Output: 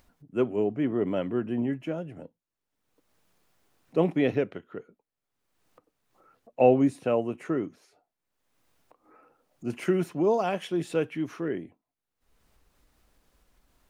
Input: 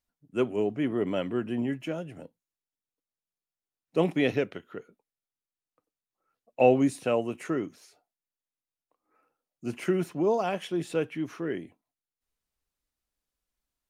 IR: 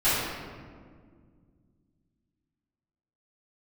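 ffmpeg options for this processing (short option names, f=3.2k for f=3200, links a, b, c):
-af "asetnsamples=n=441:p=0,asendcmd='9.7 highshelf g -2;11.48 highshelf g -10.5',highshelf=f=2.4k:g=-11,acompressor=mode=upward:threshold=-47dB:ratio=2.5,volume=1.5dB"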